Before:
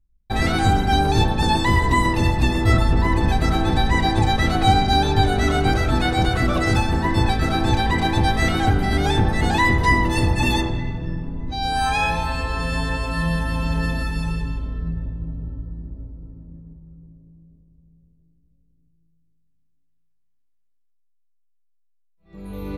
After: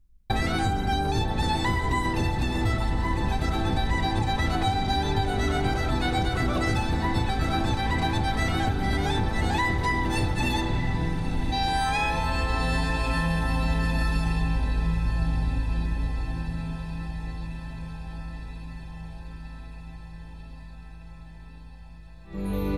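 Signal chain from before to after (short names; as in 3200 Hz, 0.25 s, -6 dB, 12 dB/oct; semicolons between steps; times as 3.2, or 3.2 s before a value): compressor 6:1, threshold -29 dBFS, peak gain reduction 17.5 dB; diffused feedback echo 1.122 s, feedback 71%, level -12 dB; gain +6 dB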